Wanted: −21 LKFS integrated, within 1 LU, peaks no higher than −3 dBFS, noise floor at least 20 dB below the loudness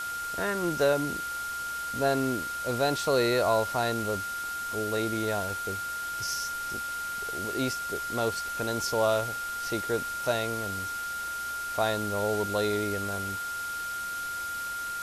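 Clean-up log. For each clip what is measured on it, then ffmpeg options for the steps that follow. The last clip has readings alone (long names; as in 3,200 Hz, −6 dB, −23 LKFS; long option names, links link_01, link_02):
interfering tone 1,400 Hz; level of the tone −32 dBFS; background noise floor −35 dBFS; target noise floor −50 dBFS; integrated loudness −29.5 LKFS; sample peak −12.5 dBFS; target loudness −21.0 LKFS
→ -af "bandreject=frequency=1400:width=30"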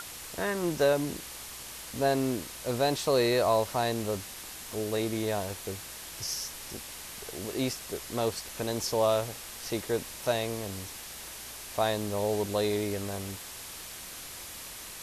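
interfering tone none found; background noise floor −43 dBFS; target noise floor −52 dBFS
→ -af "afftdn=noise_reduction=9:noise_floor=-43"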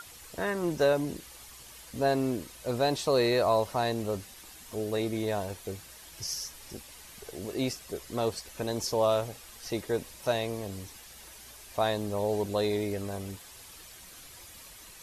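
background noise floor −50 dBFS; target noise floor −51 dBFS
→ -af "afftdn=noise_reduction=6:noise_floor=-50"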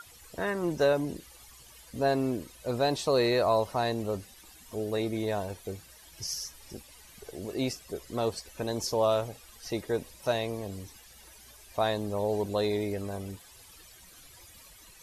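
background noise floor −54 dBFS; integrated loudness −31.0 LKFS; sample peak −14.0 dBFS; target loudness −21.0 LKFS
→ -af "volume=10dB"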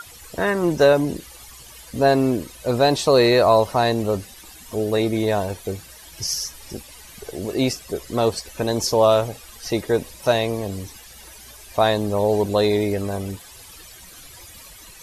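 integrated loudness −21.0 LKFS; sample peak −4.0 dBFS; background noise floor −44 dBFS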